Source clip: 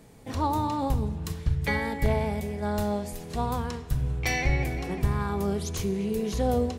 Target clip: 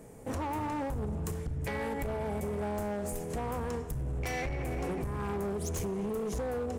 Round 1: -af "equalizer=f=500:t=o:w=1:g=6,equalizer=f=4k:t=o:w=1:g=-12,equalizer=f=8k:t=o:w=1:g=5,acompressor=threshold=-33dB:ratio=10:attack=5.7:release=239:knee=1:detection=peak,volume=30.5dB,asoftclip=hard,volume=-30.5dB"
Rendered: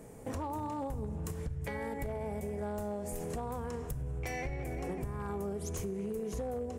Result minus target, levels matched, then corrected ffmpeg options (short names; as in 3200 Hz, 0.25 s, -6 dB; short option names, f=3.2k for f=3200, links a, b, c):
compressor: peak gain reduction +5.5 dB
-af "equalizer=f=500:t=o:w=1:g=6,equalizer=f=4k:t=o:w=1:g=-12,equalizer=f=8k:t=o:w=1:g=5,acompressor=threshold=-27dB:ratio=10:attack=5.7:release=239:knee=1:detection=peak,volume=30.5dB,asoftclip=hard,volume=-30.5dB"